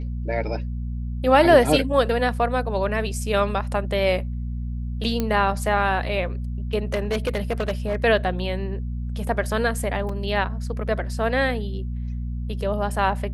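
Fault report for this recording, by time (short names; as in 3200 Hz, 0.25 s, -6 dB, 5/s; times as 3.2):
hum 60 Hz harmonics 4 -28 dBFS
5.2 pop -10 dBFS
6.94–7.96 clipped -18.5 dBFS
10.09 gap 3.8 ms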